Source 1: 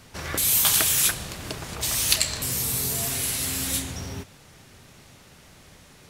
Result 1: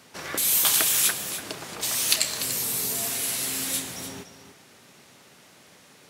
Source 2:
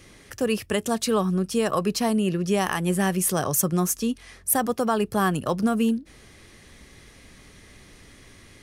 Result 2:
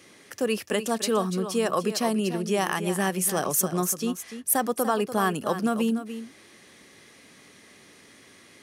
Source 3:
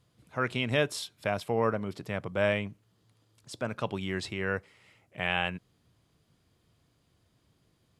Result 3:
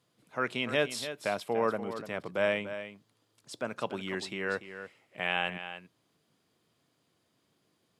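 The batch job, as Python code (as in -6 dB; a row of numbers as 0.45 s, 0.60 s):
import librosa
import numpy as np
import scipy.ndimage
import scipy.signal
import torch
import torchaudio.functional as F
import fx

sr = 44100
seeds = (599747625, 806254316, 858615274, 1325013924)

p1 = scipy.signal.sosfilt(scipy.signal.butter(2, 210.0, 'highpass', fs=sr, output='sos'), x)
p2 = p1 + fx.echo_single(p1, sr, ms=292, db=-11.0, dry=0)
y = F.gain(torch.from_numpy(p2), -1.0).numpy()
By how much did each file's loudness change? -1.0 LU, -2.0 LU, -1.5 LU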